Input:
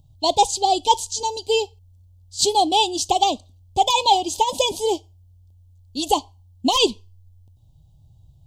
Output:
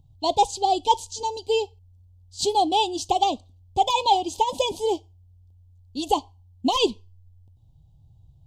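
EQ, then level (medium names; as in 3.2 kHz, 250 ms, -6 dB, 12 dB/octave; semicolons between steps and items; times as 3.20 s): treble shelf 3.6 kHz -8.5 dB; band-stop 610 Hz, Q 15; -2.0 dB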